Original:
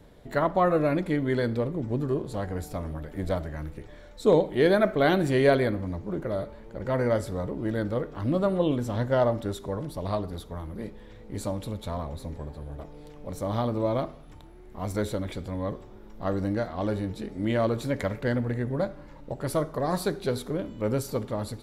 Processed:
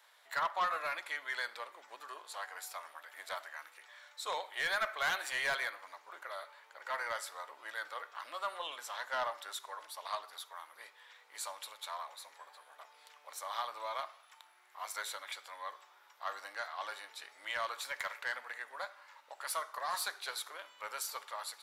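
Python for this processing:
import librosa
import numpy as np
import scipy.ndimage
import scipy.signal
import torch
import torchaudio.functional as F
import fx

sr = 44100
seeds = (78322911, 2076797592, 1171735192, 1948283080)

y = scipy.signal.sosfilt(scipy.signal.butter(4, 1000.0, 'highpass', fs=sr, output='sos'), x)
y = 10.0 ** (-27.5 / 20.0) * np.tanh(y / 10.0 ** (-27.5 / 20.0))
y = y * librosa.db_to_amplitude(1.0)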